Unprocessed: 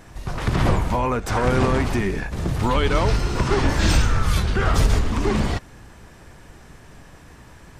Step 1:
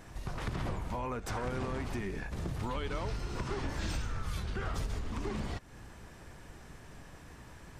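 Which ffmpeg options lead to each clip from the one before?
ffmpeg -i in.wav -af "acompressor=threshold=-30dB:ratio=3,volume=-6dB" out.wav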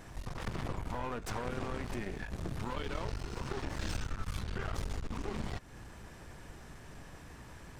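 ffmpeg -i in.wav -af "aeval=exprs='clip(val(0),-1,0.00501)':channel_layout=same,volume=1dB" out.wav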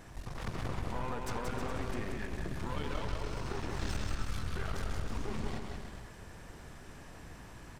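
ffmpeg -i in.wav -af "aecho=1:1:180|315|416.2|492.2|549.1:0.631|0.398|0.251|0.158|0.1,volume=-1.5dB" out.wav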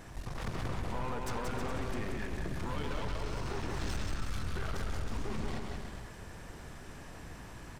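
ffmpeg -i in.wav -af "asoftclip=type=tanh:threshold=-28.5dB,volume=2.5dB" out.wav

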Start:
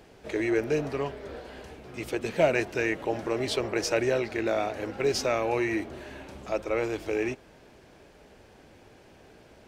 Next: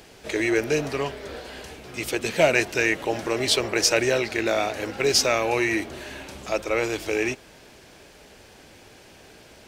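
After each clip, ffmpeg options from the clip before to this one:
ffmpeg -i in.wav -af "highshelf=frequency=2100:gain=11,volume=2.5dB" out.wav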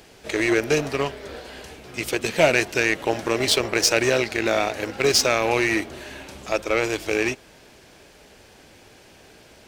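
ffmpeg -i in.wav -filter_complex "[0:a]asplit=2[link_01][link_02];[link_02]alimiter=limit=-15.5dB:level=0:latency=1:release=29,volume=2.5dB[link_03];[link_01][link_03]amix=inputs=2:normalize=0,asoftclip=type=tanh:threshold=-3.5dB,aeval=exprs='0.562*(cos(1*acos(clip(val(0)/0.562,-1,1)))-cos(1*PI/2))+0.1*(cos(3*acos(clip(val(0)/0.562,-1,1)))-cos(3*PI/2))+0.00891*(cos(7*acos(clip(val(0)/0.562,-1,1)))-cos(7*PI/2))':channel_layout=same,volume=1dB" out.wav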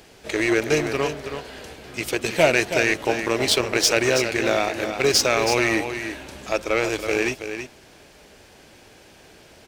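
ffmpeg -i in.wav -af "aecho=1:1:325:0.376" out.wav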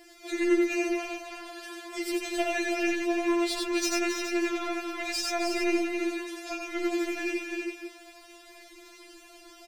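ffmpeg -i in.wav -filter_complex "[0:a]aecho=1:1:90.38|265.3:0.794|0.282,acrossover=split=130[link_01][link_02];[link_02]acompressor=threshold=-31dB:ratio=2[link_03];[link_01][link_03]amix=inputs=2:normalize=0,afftfilt=real='re*4*eq(mod(b,16),0)':imag='im*4*eq(mod(b,16),0)':win_size=2048:overlap=0.75,volume=-1dB" out.wav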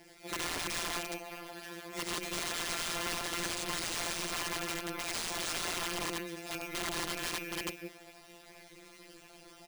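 ffmpeg -i in.wav -af "acrusher=samples=3:mix=1:aa=0.000001,aeval=exprs='(mod(23.7*val(0)+1,2)-1)/23.7':channel_layout=same,tremolo=f=170:d=0.919" out.wav

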